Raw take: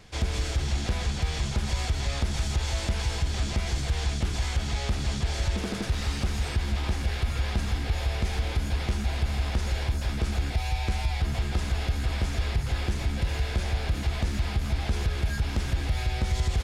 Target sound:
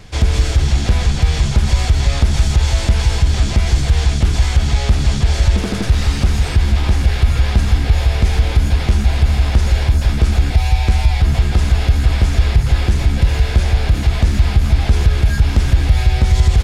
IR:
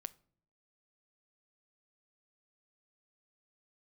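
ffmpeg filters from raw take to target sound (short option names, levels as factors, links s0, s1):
-filter_complex "[0:a]asplit=2[s0][s1];[1:a]atrim=start_sample=2205,lowshelf=f=190:g=11[s2];[s1][s2]afir=irnorm=-1:irlink=0,volume=1.33[s3];[s0][s3]amix=inputs=2:normalize=0,volume=1.58"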